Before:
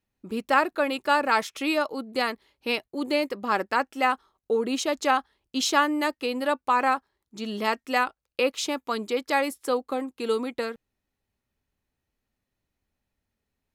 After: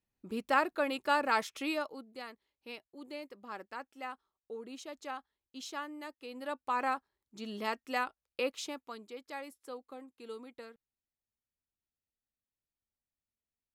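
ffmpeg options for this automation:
ffmpeg -i in.wav -af "volume=2.5dB,afade=type=out:start_time=1.53:duration=0.62:silence=0.251189,afade=type=in:start_time=6.22:duration=0.6:silence=0.334965,afade=type=out:start_time=8.47:duration=0.54:silence=0.334965" out.wav

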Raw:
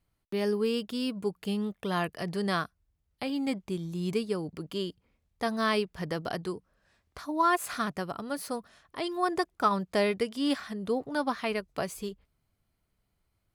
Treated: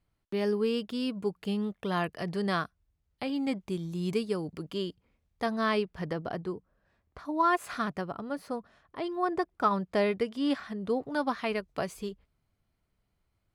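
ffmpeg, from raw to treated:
ffmpeg -i in.wav -af "asetnsamples=nb_out_samples=441:pad=0,asendcmd='3.61 lowpass f 11000;4.7 lowpass f 5400;5.46 lowpass f 2900;6.13 lowpass f 1200;7.25 lowpass f 3100;8.01 lowpass f 1500;9.51 lowpass f 2600;10.9 lowpass f 4900',lowpass=frequency=4600:poles=1" out.wav

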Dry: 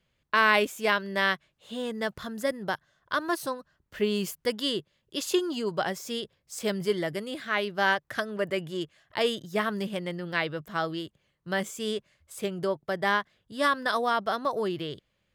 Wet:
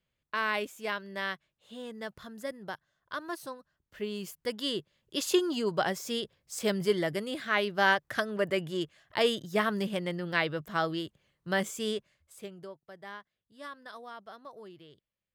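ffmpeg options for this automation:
ffmpeg -i in.wav -af "afade=type=in:start_time=4.22:duration=0.98:silence=0.354813,afade=type=out:start_time=11.76:duration=0.61:silence=0.298538,afade=type=out:start_time=12.37:duration=0.4:silence=0.375837" out.wav

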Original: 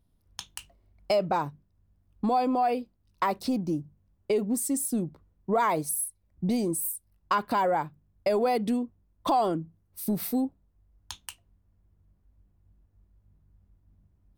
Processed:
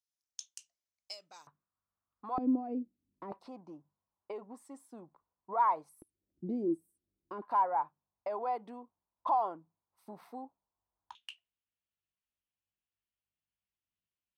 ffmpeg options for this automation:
ffmpeg -i in.wav -af "asetnsamples=nb_out_samples=441:pad=0,asendcmd='1.47 bandpass f 1200;2.38 bandpass f 270;3.32 bandpass f 980;6.02 bandpass f 330;7.42 bandpass f 940;11.15 bandpass f 2900',bandpass=frequency=6200:width_type=q:width=3.7:csg=0" out.wav

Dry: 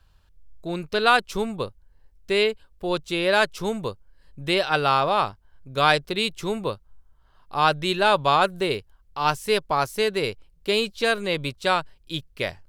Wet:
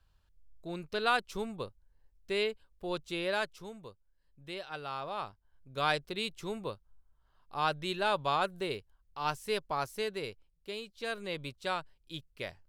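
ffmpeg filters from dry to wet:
ffmpeg -i in.wav -af "volume=5.5dB,afade=type=out:start_time=3.19:duration=0.5:silence=0.354813,afade=type=in:start_time=4.89:duration=1.02:silence=0.375837,afade=type=out:start_time=9.88:duration=0.98:silence=0.354813,afade=type=in:start_time=10.86:duration=0.38:silence=0.421697" out.wav

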